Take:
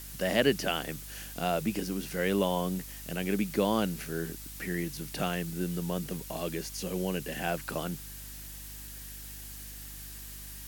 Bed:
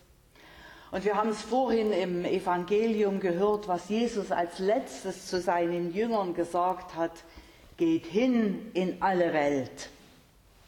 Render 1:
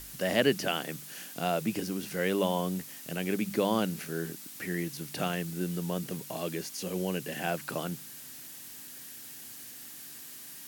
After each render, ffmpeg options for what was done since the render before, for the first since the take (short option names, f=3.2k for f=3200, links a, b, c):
-af "bandreject=f=50:t=h:w=4,bandreject=f=100:t=h:w=4,bandreject=f=150:t=h:w=4,bandreject=f=200:t=h:w=4"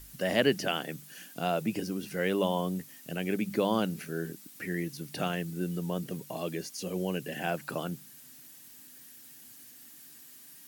-af "afftdn=nr=8:nf=-46"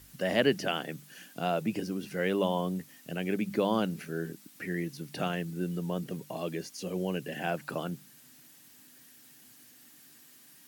-af "highpass=72,highshelf=f=5.9k:g=-6"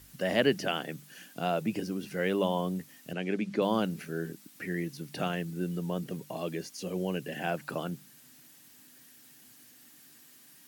-filter_complex "[0:a]asettb=1/sr,asplit=3[a][b][c];[a]atrim=end=3.134[d];[b]atrim=start=3.13:end=3.62,asetpts=PTS-STARTPTS,afade=t=in:d=0.004:c=qsin,afade=t=out:st=0.486:d=0.004:c=qsin,highpass=150,lowpass=6.3k[e];[c]atrim=start=3.616[f];[d][e]acrossfade=d=0.004:c1=hsin:c2=qsin[g];[g][f]acrossfade=d=0.004:c1=qsin:c2=hsin"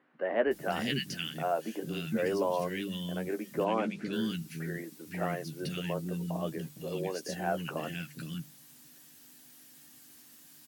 -filter_complex "[0:a]asplit=2[a][b];[b]adelay=13,volume=-8dB[c];[a][c]amix=inputs=2:normalize=0,acrossover=split=280|1900[d][e][f];[d]adelay=460[g];[f]adelay=510[h];[g][e][h]amix=inputs=3:normalize=0"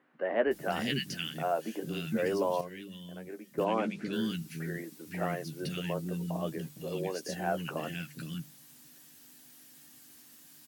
-filter_complex "[0:a]asplit=3[a][b][c];[a]atrim=end=2.612[d];[b]atrim=start=2.608:end=3.582,asetpts=PTS-STARTPTS,volume=-9dB[e];[c]atrim=start=3.578[f];[d][e]acrossfade=d=0.004:c1=hsin:c2=hsin[g];[g][f]acrossfade=d=0.004:c1=hsin:c2=hsin"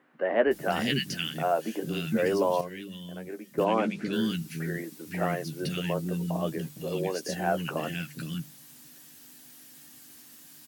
-af "volume=4.5dB"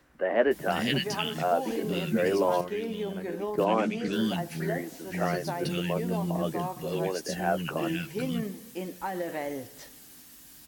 -filter_complex "[1:a]volume=-7.5dB[a];[0:a][a]amix=inputs=2:normalize=0"